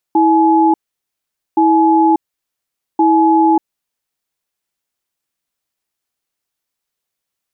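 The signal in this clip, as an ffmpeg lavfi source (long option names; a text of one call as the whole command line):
ffmpeg -f lavfi -i "aevalsrc='0.299*(sin(2*PI*325*t)+sin(2*PI*848*t))*clip(min(mod(t,1.42),0.59-mod(t,1.42))/0.005,0,1)':duration=3.56:sample_rate=44100" out.wav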